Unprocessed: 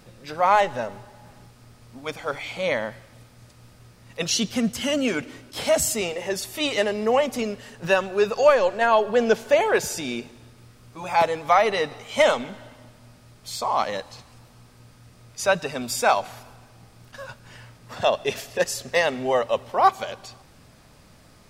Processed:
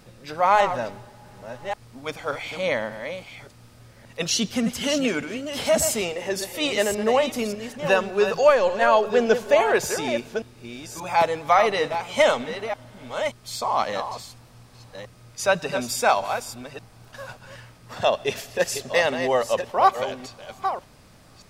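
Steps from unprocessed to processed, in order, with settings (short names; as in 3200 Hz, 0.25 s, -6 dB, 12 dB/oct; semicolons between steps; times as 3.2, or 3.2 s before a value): reverse delay 0.579 s, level -8.5 dB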